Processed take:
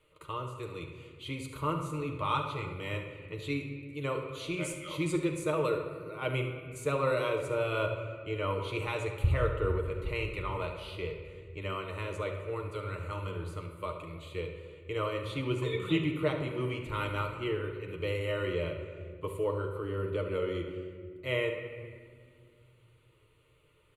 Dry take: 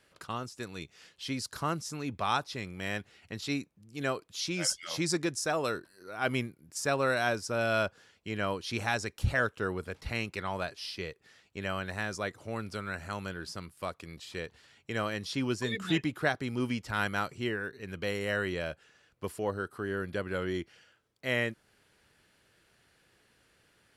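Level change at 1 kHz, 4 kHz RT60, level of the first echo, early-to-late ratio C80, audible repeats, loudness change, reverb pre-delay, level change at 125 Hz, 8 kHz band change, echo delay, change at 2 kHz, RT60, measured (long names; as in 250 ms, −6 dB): −1.5 dB, 1.1 s, −12.0 dB, 7.5 dB, 1, −0.5 dB, 6 ms, +3.5 dB, −10.0 dB, 71 ms, −5.5 dB, 1.8 s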